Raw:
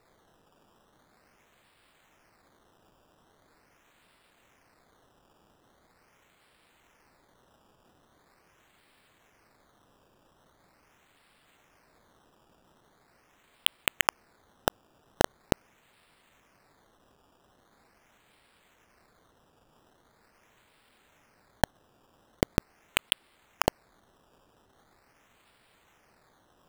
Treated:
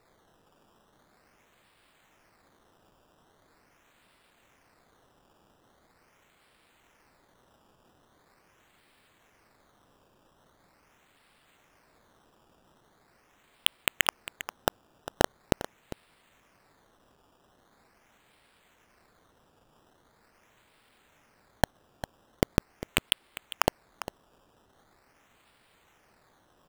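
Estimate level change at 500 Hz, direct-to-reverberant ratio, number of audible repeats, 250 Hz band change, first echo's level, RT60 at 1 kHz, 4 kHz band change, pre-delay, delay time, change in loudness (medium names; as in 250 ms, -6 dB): 0.0 dB, no reverb, 1, 0.0 dB, -14.0 dB, no reverb, 0.0 dB, no reverb, 401 ms, -1.5 dB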